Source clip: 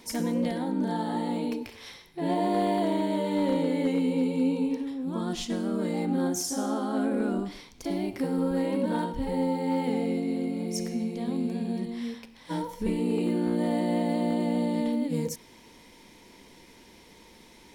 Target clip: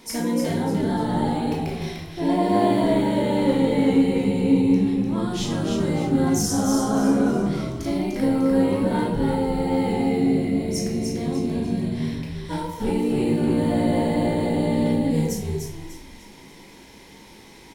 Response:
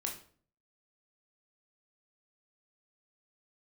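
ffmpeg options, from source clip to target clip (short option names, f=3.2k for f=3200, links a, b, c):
-filter_complex "[0:a]asplit=5[a][b][c][d][e];[b]adelay=298,afreqshift=-72,volume=-5dB[f];[c]adelay=596,afreqshift=-144,volume=-13.9dB[g];[d]adelay=894,afreqshift=-216,volume=-22.7dB[h];[e]adelay=1192,afreqshift=-288,volume=-31.6dB[i];[a][f][g][h][i]amix=inputs=5:normalize=0[j];[1:a]atrim=start_sample=2205[k];[j][k]afir=irnorm=-1:irlink=0,volume=4.5dB"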